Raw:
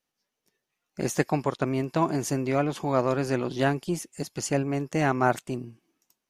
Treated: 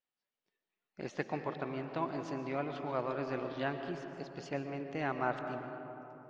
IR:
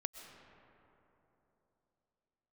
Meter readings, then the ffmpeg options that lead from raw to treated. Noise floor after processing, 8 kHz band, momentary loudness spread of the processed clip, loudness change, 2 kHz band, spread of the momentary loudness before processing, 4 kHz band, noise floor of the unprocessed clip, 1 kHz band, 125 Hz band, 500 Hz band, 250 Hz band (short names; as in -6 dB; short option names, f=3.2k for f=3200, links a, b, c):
under -85 dBFS, under -25 dB, 9 LU, -11.5 dB, -9.0 dB, 8 LU, -11.5 dB, -84 dBFS, -9.5 dB, -14.5 dB, -10.5 dB, -12.0 dB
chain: -filter_complex "[0:a]lowpass=f=4.2k:w=0.5412,lowpass=f=4.2k:w=1.3066,lowshelf=f=330:g=-7.5[a];[1:a]atrim=start_sample=2205[b];[a][b]afir=irnorm=-1:irlink=0,volume=-7dB"